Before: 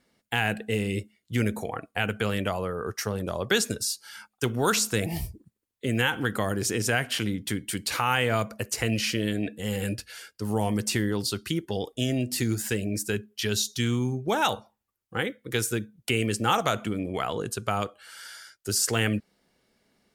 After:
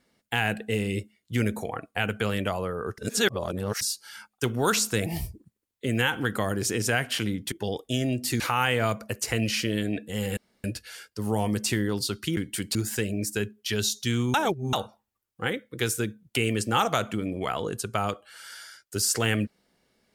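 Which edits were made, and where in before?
0:02.98–0:03.81: reverse
0:07.52–0:07.90: swap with 0:11.60–0:12.48
0:09.87: splice in room tone 0.27 s
0:14.07–0:14.46: reverse

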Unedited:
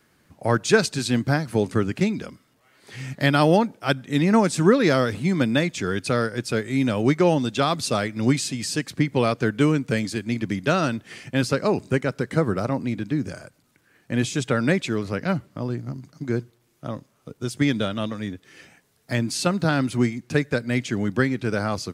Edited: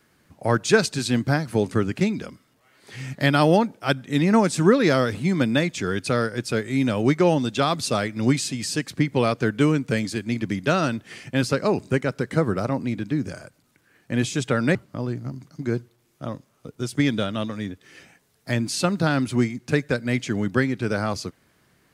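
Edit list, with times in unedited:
0:14.75–0:15.37: remove

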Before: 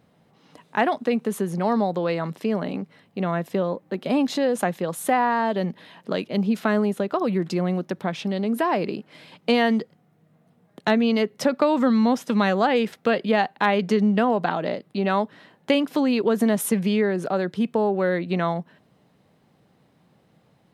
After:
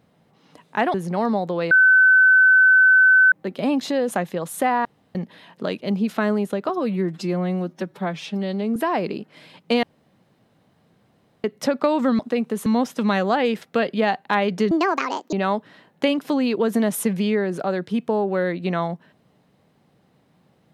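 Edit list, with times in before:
0:00.94–0:01.41: move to 0:11.97
0:02.18–0:03.79: beep over 1,520 Hz −10 dBFS
0:05.32–0:05.62: fill with room tone
0:07.16–0:08.54: time-stretch 1.5×
0:09.61–0:11.22: fill with room tone
0:14.02–0:14.99: play speed 157%

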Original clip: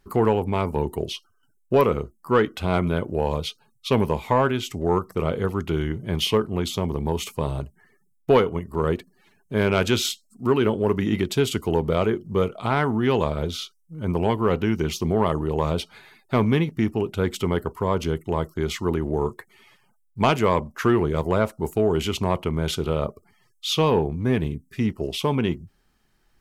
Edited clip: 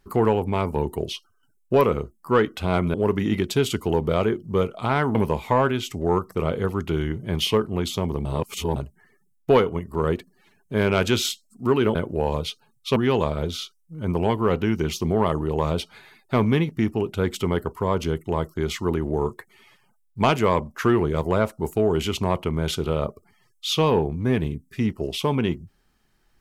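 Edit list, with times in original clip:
0:02.94–0:03.95: swap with 0:10.75–0:12.96
0:07.05–0:07.56: reverse

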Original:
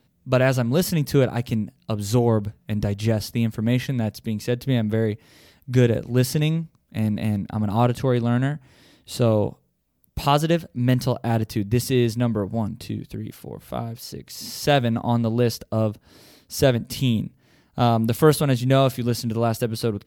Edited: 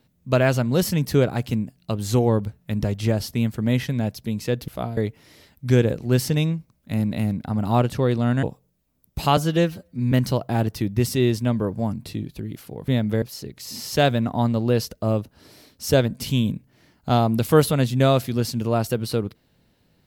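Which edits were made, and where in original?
0:04.68–0:05.02: swap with 0:13.63–0:13.92
0:08.48–0:09.43: remove
0:10.37–0:10.87: time-stretch 1.5×

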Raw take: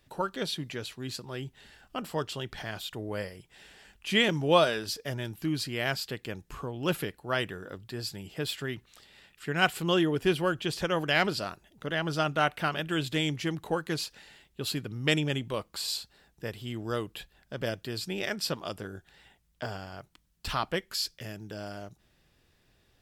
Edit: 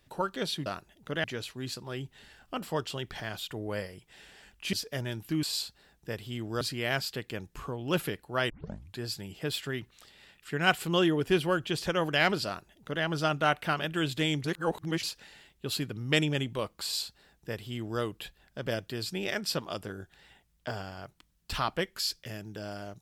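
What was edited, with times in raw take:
0:04.15–0:04.86: remove
0:07.45: tape start 0.48 s
0:11.41–0:11.99: duplicate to 0:00.66
0:13.39–0:13.98: reverse
0:15.78–0:16.96: duplicate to 0:05.56

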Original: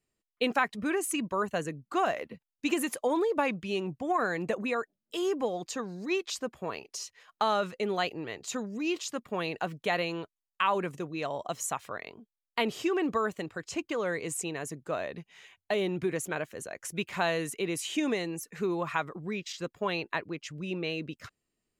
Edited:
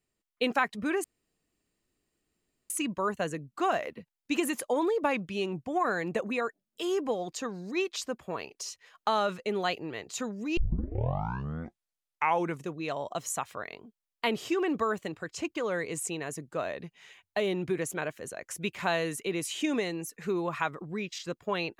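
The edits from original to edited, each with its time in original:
0:01.04: splice in room tone 1.66 s
0:08.91: tape start 2.08 s

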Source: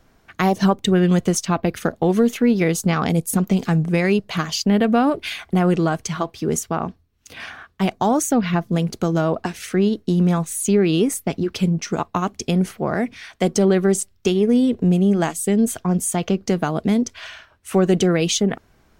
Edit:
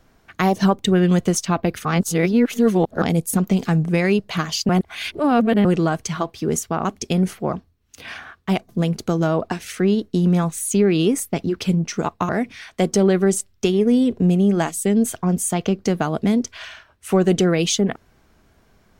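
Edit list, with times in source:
0:01.85–0:03.02: reverse
0:04.69–0:05.65: reverse
0:08.01–0:08.63: remove
0:12.23–0:12.91: move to 0:06.85

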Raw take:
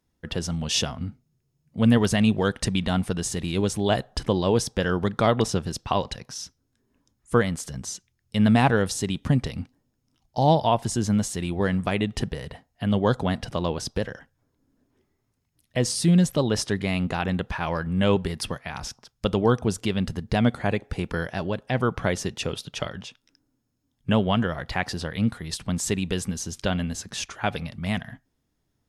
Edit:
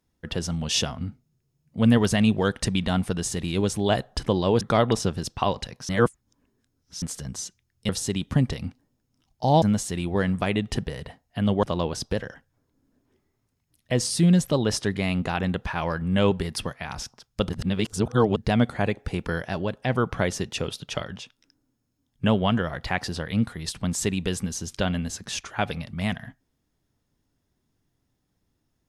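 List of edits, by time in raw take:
0:04.61–0:05.10: remove
0:06.38–0:07.51: reverse
0:08.38–0:08.83: remove
0:10.56–0:11.07: remove
0:13.08–0:13.48: remove
0:19.34–0:20.21: reverse

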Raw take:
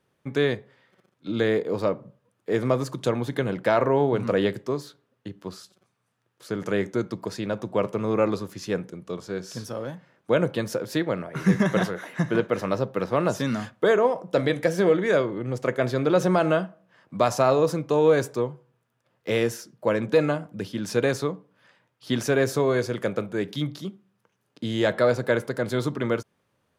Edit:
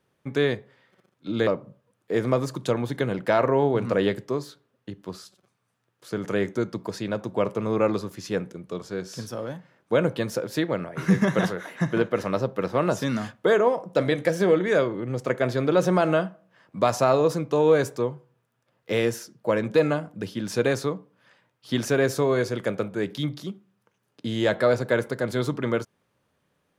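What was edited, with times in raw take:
0:01.47–0:01.85: remove

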